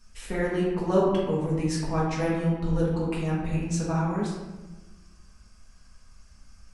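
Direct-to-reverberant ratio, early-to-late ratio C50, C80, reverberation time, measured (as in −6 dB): −7.0 dB, 1.0 dB, 4.0 dB, 1.1 s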